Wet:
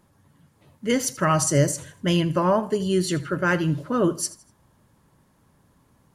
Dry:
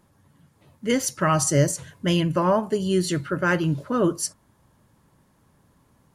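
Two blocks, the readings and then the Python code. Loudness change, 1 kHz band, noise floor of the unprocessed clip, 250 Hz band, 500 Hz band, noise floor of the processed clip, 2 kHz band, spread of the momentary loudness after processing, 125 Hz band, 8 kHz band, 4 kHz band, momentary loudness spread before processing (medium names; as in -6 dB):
0.0 dB, 0.0 dB, -63 dBFS, 0.0 dB, 0.0 dB, -63 dBFS, 0.0 dB, 6 LU, 0.0 dB, 0.0 dB, 0.0 dB, 6 LU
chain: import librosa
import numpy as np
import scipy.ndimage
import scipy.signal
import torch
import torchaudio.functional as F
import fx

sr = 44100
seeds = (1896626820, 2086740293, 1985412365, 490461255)

y = fx.echo_feedback(x, sr, ms=81, feedback_pct=36, wet_db=-18)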